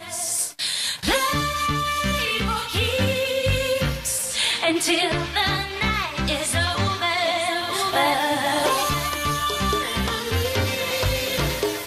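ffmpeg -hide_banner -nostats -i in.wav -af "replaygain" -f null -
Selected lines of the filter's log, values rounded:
track_gain = +3.1 dB
track_peak = 0.268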